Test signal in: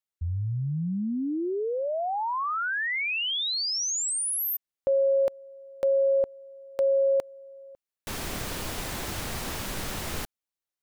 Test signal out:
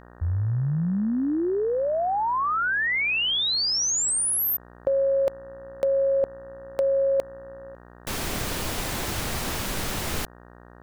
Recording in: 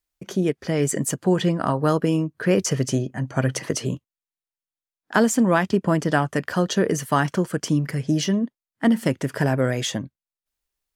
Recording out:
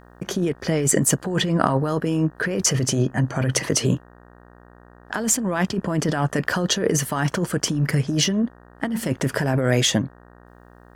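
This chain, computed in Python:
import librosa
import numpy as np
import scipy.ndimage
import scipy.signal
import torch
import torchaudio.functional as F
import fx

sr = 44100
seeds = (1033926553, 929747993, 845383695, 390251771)

y = fx.over_compress(x, sr, threshold_db=-24.0, ratio=-1.0)
y = fx.dmg_buzz(y, sr, base_hz=60.0, harmonics=31, level_db=-52.0, tilt_db=-3, odd_only=False)
y = y * 10.0 ** (3.5 / 20.0)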